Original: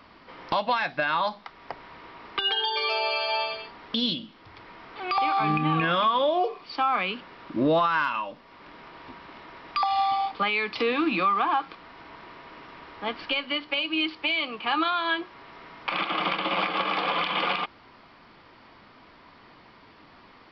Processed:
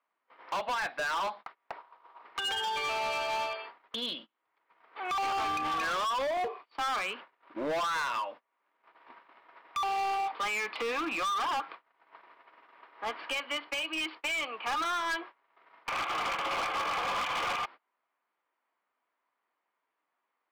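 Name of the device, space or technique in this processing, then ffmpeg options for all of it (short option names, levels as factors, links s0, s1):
walkie-talkie: -filter_complex "[0:a]highpass=570,lowpass=2400,asoftclip=type=hard:threshold=0.0355,agate=range=0.0398:threshold=0.00562:ratio=16:detection=peak,asettb=1/sr,asplit=3[s0][s1][s2];[s0]atrim=end=1.774[s3];[s1]atrim=start=1.77:end=2.23,asetpts=PTS-STARTPTS,afade=t=in:d=0.004:c=qsin,afade=t=out:st=0.456:d=0.004:c=qsin,equalizer=f=125:t=o:w=1:g=-4,equalizer=f=250:t=o:w=1:g=-6,equalizer=f=1000:t=o:w=1:g=6,equalizer=f=2000:t=o:w=1:g=-8[s4];[s2]atrim=start=2.226[s5];[s3][s4]acrossfade=d=0.004:c1=hsin:c2=qsin[s6];[s6][s5]acrossfade=d=0.004:c1=qsin:c2=hsin"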